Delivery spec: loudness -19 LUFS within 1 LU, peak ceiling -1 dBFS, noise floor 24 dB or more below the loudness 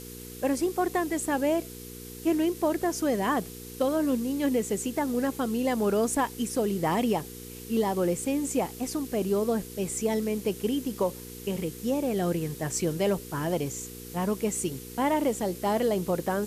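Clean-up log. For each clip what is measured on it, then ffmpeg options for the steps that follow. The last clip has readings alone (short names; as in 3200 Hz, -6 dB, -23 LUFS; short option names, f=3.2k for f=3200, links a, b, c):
hum 60 Hz; harmonics up to 480 Hz; hum level -43 dBFS; noise floor -43 dBFS; noise floor target -53 dBFS; loudness -28.5 LUFS; peak -14.0 dBFS; loudness target -19.0 LUFS
-> -af "bandreject=f=60:t=h:w=4,bandreject=f=120:t=h:w=4,bandreject=f=180:t=h:w=4,bandreject=f=240:t=h:w=4,bandreject=f=300:t=h:w=4,bandreject=f=360:t=h:w=4,bandreject=f=420:t=h:w=4,bandreject=f=480:t=h:w=4"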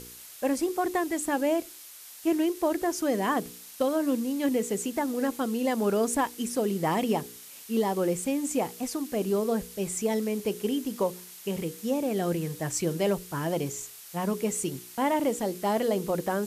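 hum none; noise floor -47 dBFS; noise floor target -53 dBFS
-> -af "afftdn=nr=6:nf=-47"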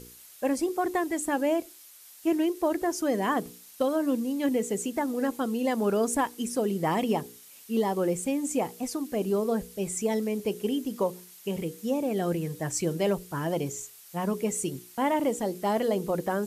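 noise floor -51 dBFS; noise floor target -53 dBFS
-> -af "afftdn=nr=6:nf=-51"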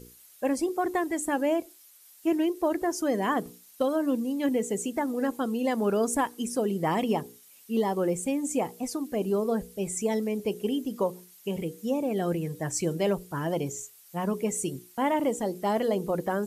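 noise floor -55 dBFS; loudness -29.0 LUFS; peak -14.5 dBFS; loudness target -19.0 LUFS
-> -af "volume=10dB"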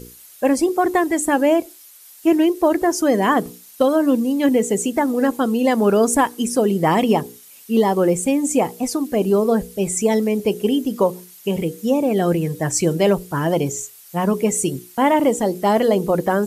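loudness -19.0 LUFS; peak -4.5 dBFS; noise floor -45 dBFS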